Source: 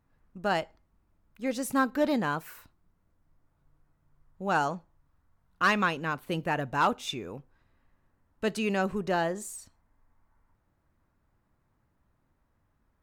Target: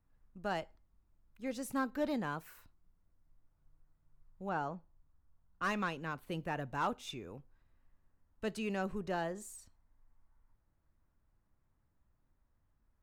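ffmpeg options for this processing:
ffmpeg -i in.wav -filter_complex "[0:a]lowshelf=frequency=64:gain=11.5,acrossover=split=400|1200[link_01][link_02][link_03];[link_03]asoftclip=type=tanh:threshold=-26dB[link_04];[link_01][link_02][link_04]amix=inputs=3:normalize=0,asettb=1/sr,asplit=3[link_05][link_06][link_07];[link_05]atrim=end=4.494[link_08];[link_06]atrim=start=4.49:end=5.62,asetpts=PTS-STARTPTS,afade=type=in:duration=0.004:curve=qsin,afade=type=out:start_time=1.126:duration=0.004:curve=qsin,lowpass=frequency=1600:poles=1[link_09];[link_07]atrim=start=5.616[link_10];[link_08][link_09]acrossfade=duration=0.004:curve1=hsin:curve2=qsin[link_11];[link_11][link_10]acrossfade=duration=0.004:curve1=qsin:curve2=hsin,volume=-9dB" out.wav

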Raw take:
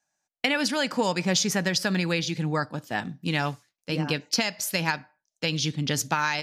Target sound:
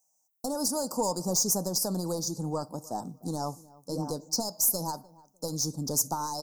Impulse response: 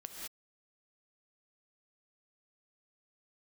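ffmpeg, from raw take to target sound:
-filter_complex "[0:a]aemphasis=mode=production:type=bsi,asettb=1/sr,asplit=3[link_01][link_02][link_03];[link_01]atrim=end=2.334[link_04];[link_02]atrim=start=2.33:end=4.45,asetpts=PTS-STARTPTS,afade=type=in:duration=0.004:curve=qsin,afade=type=out:start_time=2.116:duration=0.004:curve=qsin,acrossover=split=8900[link_05][link_06];[link_06]acompressor=threshold=-56dB:ratio=4:attack=1:release=60[link_07];[link_05][link_07]amix=inputs=2:normalize=0[link_08];[link_03]atrim=start=4.446[link_09];[link_04][link_08]acrossfade=duration=0.004:curve1=hsin:curve2=qsin[link_10];[link_10][link_09]acrossfade=duration=0.004:curve1=qsin:curve2=hsin,lowshelf=frequency=81:gain=6.5,aeval=exprs='(tanh(8.91*val(0)+0.05)-tanh(0.05))/8.91':channel_layout=same,asuperstop=centerf=2400:order=8:qfactor=0.55,asplit=2[link_11][link_12];[link_12]adelay=301,lowpass=frequency=1700:poles=1,volume=-21.5dB,asplit=2[link_13][link_14];[link_14]adelay=301,lowpass=frequency=1700:poles=1,volume=0.26[link_15];[link_11][link_13][link_15]amix=inputs=3:normalize=0"

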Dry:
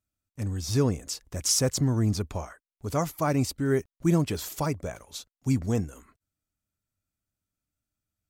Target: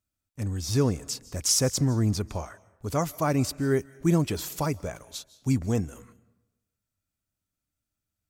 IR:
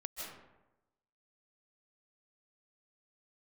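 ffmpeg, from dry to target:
-filter_complex "[0:a]asplit=2[link_01][link_02];[1:a]atrim=start_sample=2205,highshelf=frequency=2100:gain=10.5[link_03];[link_02][link_03]afir=irnorm=-1:irlink=0,volume=-21.5dB[link_04];[link_01][link_04]amix=inputs=2:normalize=0"

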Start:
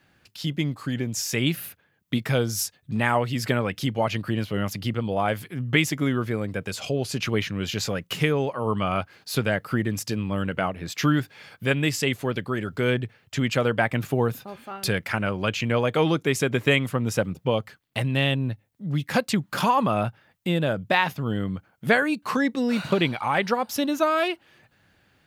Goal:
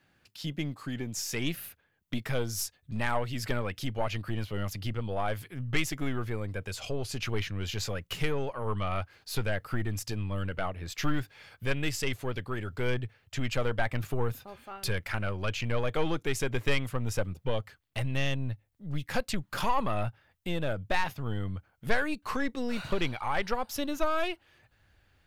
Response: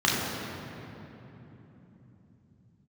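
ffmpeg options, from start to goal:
-af "aeval=exprs='(tanh(5.01*val(0)+0.2)-tanh(0.2))/5.01':channel_layout=same,asubboost=boost=9:cutoff=58,volume=-5.5dB"

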